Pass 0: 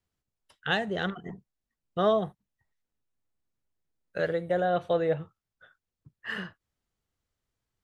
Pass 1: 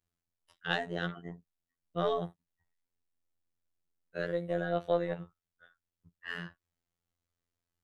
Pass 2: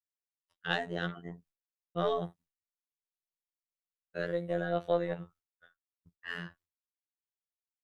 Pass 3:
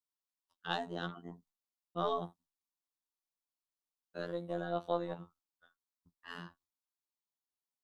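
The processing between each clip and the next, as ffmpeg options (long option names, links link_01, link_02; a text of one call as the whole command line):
ffmpeg -i in.wav -af "aeval=exprs='0.237*(cos(1*acos(clip(val(0)/0.237,-1,1)))-cos(1*PI/2))+0.0211*(cos(2*acos(clip(val(0)/0.237,-1,1)))-cos(2*PI/2))':channel_layout=same,afftfilt=real='hypot(re,im)*cos(PI*b)':imag='0':win_size=2048:overlap=0.75,volume=-1.5dB" out.wav
ffmpeg -i in.wav -af "agate=range=-33dB:threshold=-58dB:ratio=3:detection=peak" out.wav
ffmpeg -i in.wav -af "equalizer=frequency=125:width_type=o:width=1:gain=-11,equalizer=frequency=250:width_type=o:width=1:gain=7,equalizer=frequency=500:width_type=o:width=1:gain=-6,equalizer=frequency=1000:width_type=o:width=1:gain=9,equalizer=frequency=2000:width_type=o:width=1:gain=-12,equalizer=frequency=4000:width_type=o:width=1:gain=4,volume=-3dB" out.wav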